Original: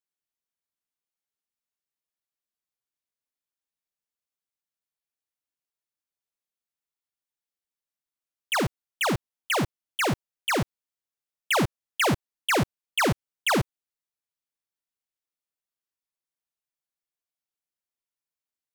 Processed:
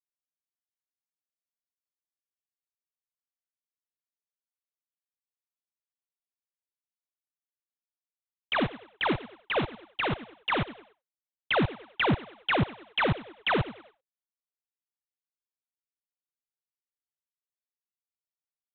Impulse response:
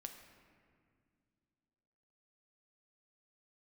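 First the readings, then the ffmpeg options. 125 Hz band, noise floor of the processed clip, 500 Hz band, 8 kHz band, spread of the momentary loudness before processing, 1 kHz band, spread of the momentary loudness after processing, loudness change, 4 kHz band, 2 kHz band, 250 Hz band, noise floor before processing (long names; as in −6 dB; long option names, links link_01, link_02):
−2.0 dB, below −85 dBFS, −2.0 dB, below −40 dB, 6 LU, −2.5 dB, 6 LU, −2.5 dB, −3.0 dB, −2.5 dB, −2.0 dB, below −85 dBFS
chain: -filter_complex "[0:a]asplit=5[link_01][link_02][link_03][link_04][link_05];[link_02]adelay=97,afreqshift=100,volume=-17dB[link_06];[link_03]adelay=194,afreqshift=200,volume=-24.3dB[link_07];[link_04]adelay=291,afreqshift=300,volume=-31.7dB[link_08];[link_05]adelay=388,afreqshift=400,volume=-39dB[link_09];[link_01][link_06][link_07][link_08][link_09]amix=inputs=5:normalize=0,aphaser=in_gain=1:out_gain=1:delay=4.8:decay=0.37:speed=1.9:type=triangular,agate=range=-33dB:threshold=-47dB:ratio=3:detection=peak,aresample=8000,acrusher=bits=2:mode=log:mix=0:aa=0.000001,aresample=44100,volume=-3.5dB"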